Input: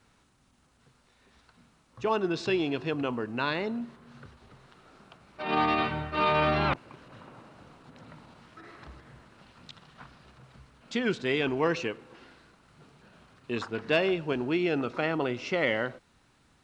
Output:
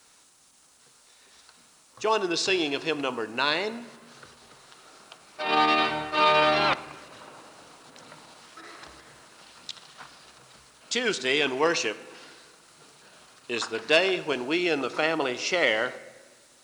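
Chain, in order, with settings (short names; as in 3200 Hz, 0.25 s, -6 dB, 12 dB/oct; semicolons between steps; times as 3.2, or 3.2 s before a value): tone controls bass -15 dB, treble +14 dB; reverb RT60 1.4 s, pre-delay 6 ms, DRR 13 dB; gain +4 dB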